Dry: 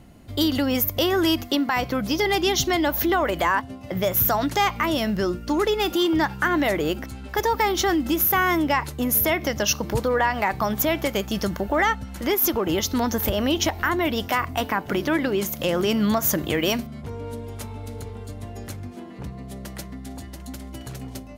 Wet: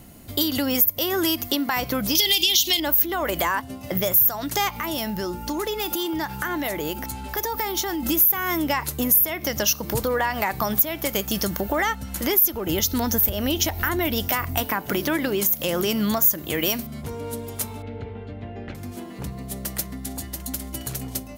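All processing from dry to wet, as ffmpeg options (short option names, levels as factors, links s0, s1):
-filter_complex "[0:a]asettb=1/sr,asplit=3[s0][s1][s2];[s0]atrim=end=2.154[s3];[s1]atrim=start=2.15:end=2.8,asetpts=PTS-STARTPTS,afade=t=in:d=0.004:c=qsin,afade=t=out:st=0.646:d=0.004:c=qsin,highshelf=f=2100:t=q:w=3:g=13,acompressor=threshold=0.282:ratio=6:attack=3.2:release=140:knee=1:detection=peak[s4];[s2]atrim=start=2.796[s5];[s3][s4]acrossfade=d=0.004:c1=hsin:c2=qsin[s6];[s6][s5]acrossfade=d=0.004:c1=qsin:c2=hsin,asettb=1/sr,asplit=3[s7][s8][s9];[s7]atrim=end=4.694[s10];[s8]atrim=start=4.69:end=8.03,asetpts=PTS-STARTPTS,afade=t=in:d=0.004:c=qsin,afade=t=out:st=3.336:d=0.004:c=qsin,acompressor=threshold=0.0251:ratio=2:attack=3.2:release=140:knee=1:detection=peak,aeval=exprs='val(0)+0.01*sin(2*PI*870*n/s)':c=same[s11];[s9]atrim=start=8.026[s12];[s10][s11]acrossfade=d=0.004:c1=hsin:c2=qsin[s13];[s13][s12]acrossfade=d=0.004:c1=qsin:c2=hsin,asettb=1/sr,asplit=3[s14][s15][s16];[s14]atrim=end=12.354[s17];[s15]atrim=start=12.35:end=14.63,asetpts=PTS-STARTPTS,afade=t=in:d=0.004:c=qsin,afade=t=out:st=2.276:d=0.004:c=qsin,lowshelf=f=110:g=9,bandreject=f=1100:w=9.9[s18];[s16]atrim=start=14.626[s19];[s17][s18]acrossfade=d=0.004:c1=hsin:c2=qsin[s20];[s20][s19]acrossfade=d=0.004:c1=qsin:c2=hsin,asettb=1/sr,asplit=3[s21][s22][s23];[s21]atrim=end=17.824[s24];[s22]atrim=start=17.82:end=18.75,asetpts=PTS-STARTPTS,afade=t=in:d=0.004:c=qsin,afade=t=out:st=0.926:d=0.004:c=qsin,lowpass=f=2800:w=0.5412,lowpass=f=2800:w=1.3066,equalizer=f=1100:w=5.7:g=-9.5[s25];[s23]atrim=start=18.746[s26];[s24][s25]acrossfade=d=0.004:c1=hsin:c2=qsin[s27];[s27][s26]acrossfade=d=0.004:c1=qsin:c2=hsin,aemphasis=mode=production:type=50fm,bandreject=f=50:t=h:w=6,bandreject=f=100:t=h:w=6,acompressor=threshold=0.0631:ratio=2.5,volume=1.33"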